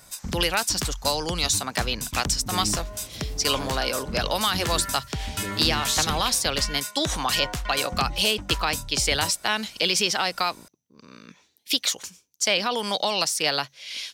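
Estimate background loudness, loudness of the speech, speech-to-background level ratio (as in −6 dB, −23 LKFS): −30.5 LKFS, −24.5 LKFS, 6.0 dB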